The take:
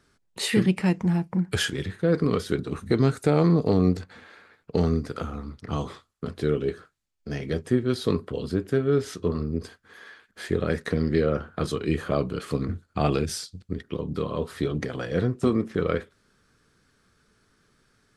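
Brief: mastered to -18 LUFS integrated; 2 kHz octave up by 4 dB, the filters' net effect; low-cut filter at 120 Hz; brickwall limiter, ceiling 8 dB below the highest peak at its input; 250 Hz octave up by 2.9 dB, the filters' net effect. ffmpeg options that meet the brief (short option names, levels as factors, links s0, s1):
-af "highpass=120,equalizer=f=250:t=o:g=4.5,equalizer=f=2000:t=o:g=5,volume=2.82,alimiter=limit=0.562:level=0:latency=1"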